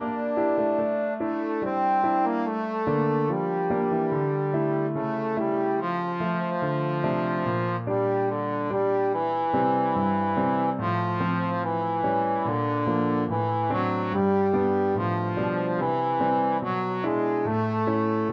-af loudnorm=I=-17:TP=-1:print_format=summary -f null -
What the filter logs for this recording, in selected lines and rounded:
Input Integrated:    -25.3 LUFS
Input True Peak:     -11.6 dBTP
Input LRA:             1.3 LU
Input Threshold:     -35.3 LUFS